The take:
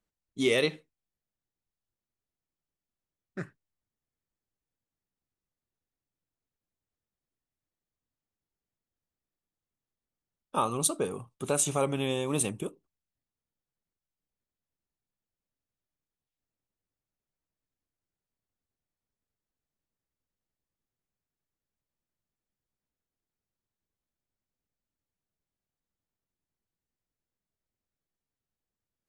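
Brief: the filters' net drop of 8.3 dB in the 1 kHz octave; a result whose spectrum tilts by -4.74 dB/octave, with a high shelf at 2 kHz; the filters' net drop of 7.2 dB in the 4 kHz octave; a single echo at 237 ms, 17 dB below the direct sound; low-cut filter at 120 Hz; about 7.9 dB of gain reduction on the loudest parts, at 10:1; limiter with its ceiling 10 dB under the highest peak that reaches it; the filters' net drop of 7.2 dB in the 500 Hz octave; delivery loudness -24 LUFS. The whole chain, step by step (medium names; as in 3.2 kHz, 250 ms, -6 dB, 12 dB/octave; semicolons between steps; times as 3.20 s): high-pass 120 Hz; peaking EQ 500 Hz -7 dB; peaking EQ 1 kHz -7.5 dB; treble shelf 2 kHz -3.5 dB; peaking EQ 4 kHz -5 dB; compression 10:1, threshold -34 dBFS; peak limiter -32.5 dBFS; delay 237 ms -17 dB; trim +20.5 dB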